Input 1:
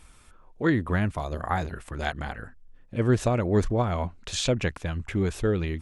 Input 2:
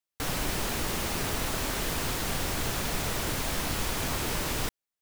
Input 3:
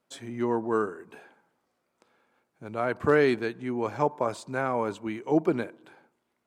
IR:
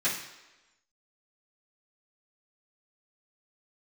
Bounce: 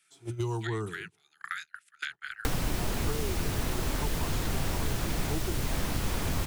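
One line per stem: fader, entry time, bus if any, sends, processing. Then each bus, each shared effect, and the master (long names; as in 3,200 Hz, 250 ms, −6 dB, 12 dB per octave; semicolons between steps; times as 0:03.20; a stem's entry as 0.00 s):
−11.5 dB, 0.00 s, no send, Butterworth high-pass 1,300 Hz 96 dB per octave; downward compressor 8 to 1, threshold −35 dBFS, peak gain reduction 10.5 dB
−5.0 dB, 2.25 s, no send, no processing
−14.0 dB, 0.00 s, no send, phaser with its sweep stopped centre 360 Hz, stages 8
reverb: not used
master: noise gate −53 dBFS, range −28 dB; low-shelf EQ 270 Hz +9 dB; multiband upward and downward compressor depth 100%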